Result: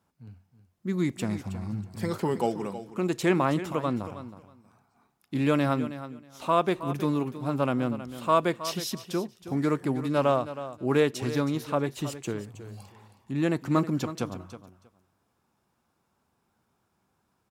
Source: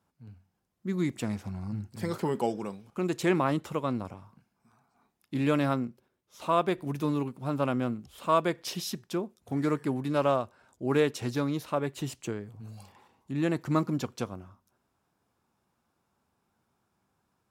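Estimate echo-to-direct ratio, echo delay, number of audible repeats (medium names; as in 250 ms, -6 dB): -13.0 dB, 319 ms, 2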